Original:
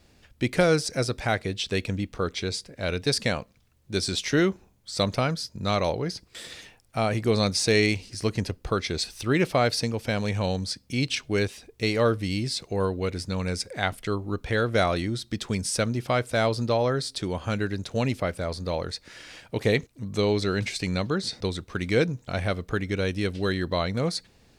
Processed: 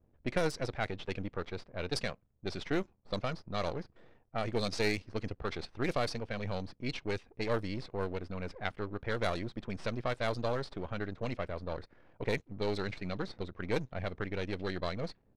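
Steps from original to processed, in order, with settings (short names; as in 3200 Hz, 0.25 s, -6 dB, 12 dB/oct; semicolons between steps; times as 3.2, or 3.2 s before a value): half-wave gain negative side -12 dB; low-pass opened by the level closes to 720 Hz, open at -20 dBFS; tempo 1.6×; gain -6 dB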